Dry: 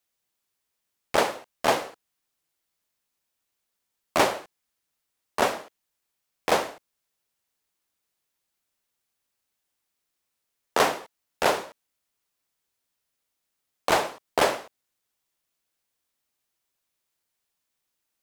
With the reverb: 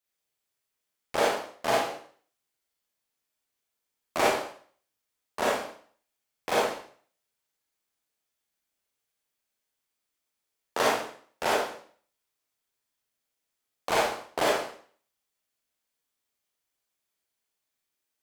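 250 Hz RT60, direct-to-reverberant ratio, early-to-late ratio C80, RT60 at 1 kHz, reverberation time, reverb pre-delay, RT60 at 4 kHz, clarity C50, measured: 0.50 s, -4.5 dB, 8.5 dB, 0.50 s, 0.50 s, 35 ms, 0.50 s, -0.5 dB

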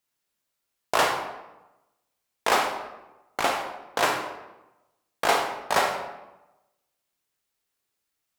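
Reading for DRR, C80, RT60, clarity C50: 2.0 dB, 8.0 dB, 1.0 s, 5.0 dB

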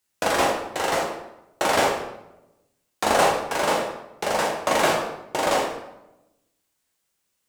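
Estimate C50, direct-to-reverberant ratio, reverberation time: 4.0 dB, -1.5 dB, 0.90 s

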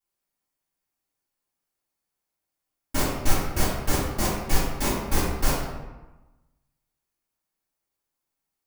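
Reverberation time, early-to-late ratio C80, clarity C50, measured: 1.1 s, 3.0 dB, 0.5 dB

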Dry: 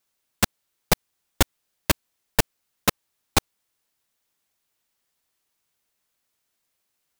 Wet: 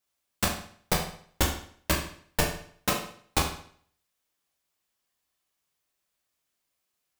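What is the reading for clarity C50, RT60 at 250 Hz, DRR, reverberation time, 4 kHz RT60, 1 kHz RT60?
6.0 dB, 0.55 s, -1.5 dB, 0.55 s, 0.50 s, 0.55 s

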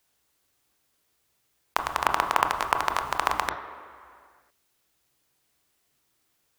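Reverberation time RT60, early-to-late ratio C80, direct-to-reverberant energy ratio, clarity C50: 2.2 s, 10.0 dB, 5.0 dB, 8.5 dB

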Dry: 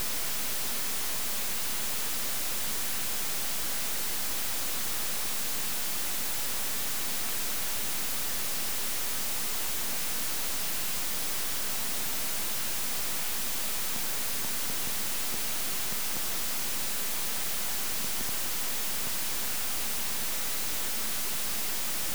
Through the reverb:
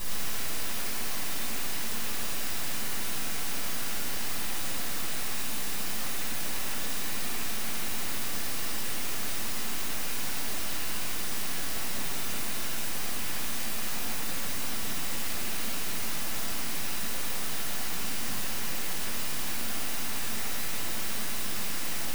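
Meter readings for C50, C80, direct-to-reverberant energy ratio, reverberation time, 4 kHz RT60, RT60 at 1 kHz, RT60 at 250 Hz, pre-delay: -3.0 dB, -0.5 dB, -9.0 dB, 2.2 s, 1.3 s, 1.8 s, 3.7 s, 6 ms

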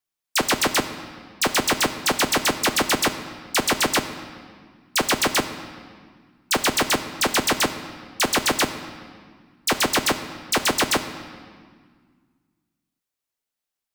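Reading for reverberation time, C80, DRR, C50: 1.7 s, 11.5 dB, 8.0 dB, 10.5 dB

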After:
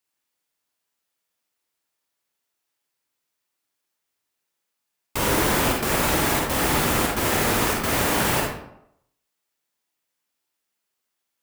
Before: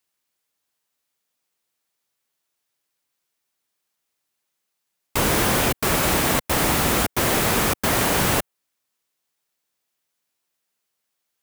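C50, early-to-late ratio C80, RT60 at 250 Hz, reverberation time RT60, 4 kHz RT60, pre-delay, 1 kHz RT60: 1.0 dB, 5.5 dB, 0.75 s, 0.75 s, 0.50 s, 38 ms, 0.75 s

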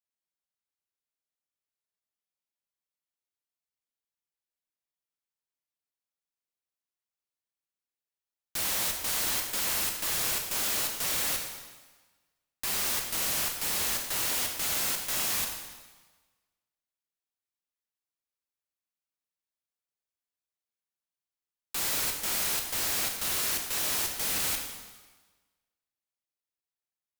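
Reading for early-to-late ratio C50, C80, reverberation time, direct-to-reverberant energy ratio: 5.0 dB, 6.5 dB, 1.3 s, 2.0 dB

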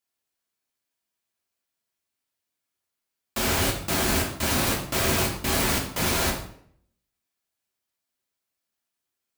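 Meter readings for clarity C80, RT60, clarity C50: 10.5 dB, 0.65 s, 7.0 dB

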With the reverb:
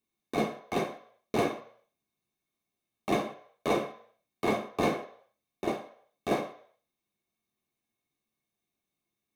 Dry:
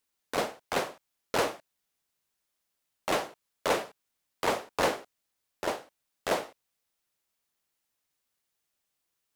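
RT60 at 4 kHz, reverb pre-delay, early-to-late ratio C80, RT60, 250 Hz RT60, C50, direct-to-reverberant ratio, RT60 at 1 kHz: 0.55 s, 3 ms, 15.0 dB, 0.60 s, 0.40 s, 12.0 dB, 2.0 dB, 0.60 s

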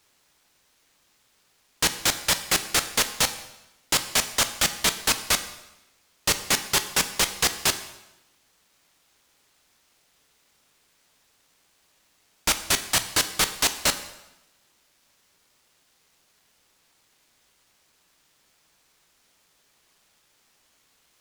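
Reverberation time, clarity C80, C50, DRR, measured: 0.95 s, 14.0 dB, 12.0 dB, 9.0 dB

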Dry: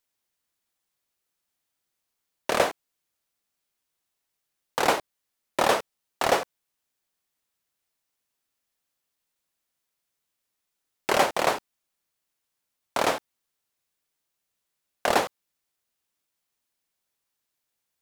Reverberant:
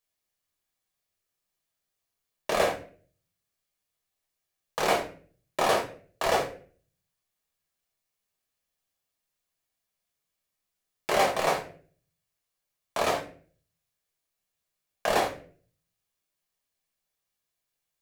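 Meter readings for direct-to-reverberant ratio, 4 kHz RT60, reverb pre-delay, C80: 0.5 dB, 0.35 s, 5 ms, 15.0 dB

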